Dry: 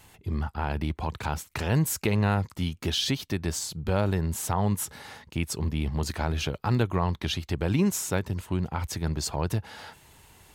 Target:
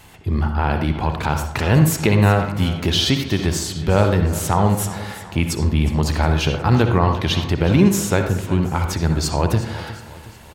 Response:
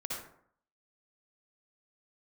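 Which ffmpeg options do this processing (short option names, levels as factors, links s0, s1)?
-filter_complex "[0:a]aecho=1:1:363|726|1089|1452:0.158|0.0761|0.0365|0.0175,asplit=2[s0][s1];[1:a]atrim=start_sample=2205,lowpass=5700[s2];[s1][s2]afir=irnorm=-1:irlink=0,volume=0.668[s3];[s0][s3]amix=inputs=2:normalize=0,volume=2"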